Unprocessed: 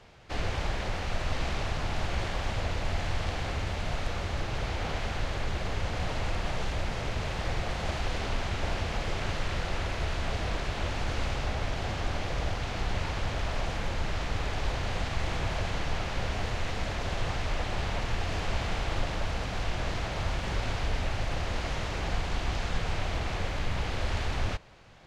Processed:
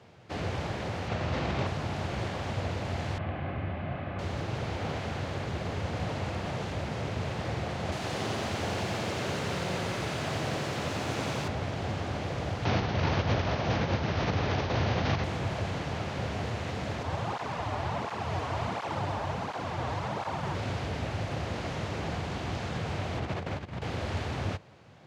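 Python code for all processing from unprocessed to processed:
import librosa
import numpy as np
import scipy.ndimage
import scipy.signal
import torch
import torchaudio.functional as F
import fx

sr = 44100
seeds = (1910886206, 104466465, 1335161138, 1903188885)

y = fx.chain(x, sr, fx.air_absorb(metres=68.0),
    fx.doubler(ms=47.0, db=-6.5),
    fx.env_flatten(amount_pct=70), at=(1.08, 1.67))
y = fx.chain(y, sr, fx.lowpass(hz=2700.0, slope=24),
    fx.notch_comb(f0_hz=460.0), at=(3.18, 4.19))
y = fx.chain(y, sr, fx.highpass(hz=110.0, slope=12),
    fx.high_shelf(hz=7000.0, db=10.5),
    fx.echo_crushed(ms=89, feedback_pct=80, bits=10, wet_db=-5), at=(7.92, 11.48))
y = fx.chain(y, sr, fx.steep_lowpass(hz=6300.0, slope=72),
    fx.env_flatten(amount_pct=100), at=(12.65, 15.24))
y = fx.chain(y, sr, fx.peak_eq(hz=950.0, db=9.5, octaves=0.93),
    fx.room_flutter(wall_m=10.5, rt60_s=0.49),
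    fx.flanger_cancel(hz=1.4, depth_ms=6.2), at=(17.03, 20.55))
y = fx.chain(y, sr, fx.high_shelf(hz=4700.0, db=-6.5),
    fx.over_compress(threshold_db=-32.0, ratio=-0.5), at=(23.18, 23.82))
y = scipy.signal.sosfilt(scipy.signal.butter(4, 90.0, 'highpass', fs=sr, output='sos'), y)
y = fx.tilt_shelf(y, sr, db=4.0, hz=750.0)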